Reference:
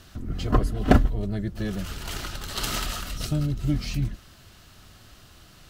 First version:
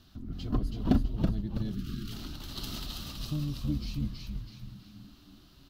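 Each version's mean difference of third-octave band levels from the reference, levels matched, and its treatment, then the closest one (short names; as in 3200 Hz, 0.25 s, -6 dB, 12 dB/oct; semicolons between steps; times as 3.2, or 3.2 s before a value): 5.5 dB: on a send: frequency-shifting echo 0.326 s, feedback 42%, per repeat -83 Hz, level -3.5 dB; on the sum: dynamic EQ 1400 Hz, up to -5 dB, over -39 dBFS, Q 0.77; spectral gain 1.75–2.12, 450–1100 Hz -26 dB; graphic EQ 250/500/2000/4000/8000 Hz +6/-7/-8/+6/-10 dB; gain -9 dB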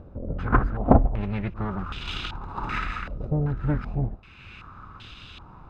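10.0 dB: minimum comb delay 0.8 ms; upward compressor, threshold -37 dBFS; stepped low-pass 2.6 Hz 560–3200 Hz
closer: first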